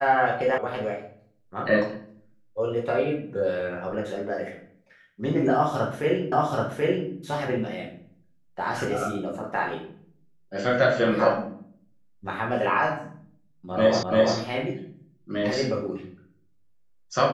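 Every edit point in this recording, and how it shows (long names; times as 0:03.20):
0:00.58: cut off before it has died away
0:06.32: the same again, the last 0.78 s
0:14.03: the same again, the last 0.34 s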